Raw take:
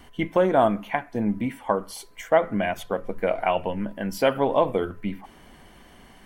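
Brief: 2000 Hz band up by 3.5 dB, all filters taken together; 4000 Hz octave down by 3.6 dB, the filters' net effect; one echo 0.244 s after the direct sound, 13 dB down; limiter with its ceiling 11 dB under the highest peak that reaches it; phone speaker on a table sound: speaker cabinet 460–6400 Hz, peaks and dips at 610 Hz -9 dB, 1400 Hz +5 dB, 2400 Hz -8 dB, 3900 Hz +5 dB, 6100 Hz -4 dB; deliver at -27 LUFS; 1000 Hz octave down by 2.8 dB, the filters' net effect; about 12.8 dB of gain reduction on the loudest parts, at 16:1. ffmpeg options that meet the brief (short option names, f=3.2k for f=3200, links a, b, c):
-af "equalizer=f=1k:t=o:g=-3.5,equalizer=f=2k:t=o:g=7.5,equalizer=f=4k:t=o:g=-8.5,acompressor=threshold=-27dB:ratio=16,alimiter=level_in=0.5dB:limit=-24dB:level=0:latency=1,volume=-0.5dB,highpass=f=460:w=0.5412,highpass=f=460:w=1.3066,equalizer=f=610:t=q:w=4:g=-9,equalizer=f=1.4k:t=q:w=4:g=5,equalizer=f=2.4k:t=q:w=4:g=-8,equalizer=f=3.9k:t=q:w=4:g=5,equalizer=f=6.1k:t=q:w=4:g=-4,lowpass=f=6.4k:w=0.5412,lowpass=f=6.4k:w=1.3066,aecho=1:1:244:0.224,volume=14.5dB"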